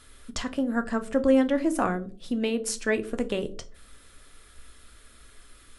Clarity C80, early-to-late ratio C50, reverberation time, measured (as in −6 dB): 22.0 dB, 18.5 dB, 0.40 s